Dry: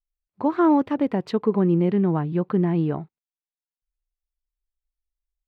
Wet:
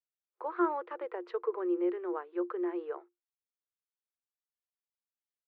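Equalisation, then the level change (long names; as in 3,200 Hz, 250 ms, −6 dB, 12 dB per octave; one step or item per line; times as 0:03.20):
Chebyshev high-pass with heavy ripple 340 Hz, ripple 9 dB
Bessel low-pass filter 2,500 Hz, order 2
−4.0 dB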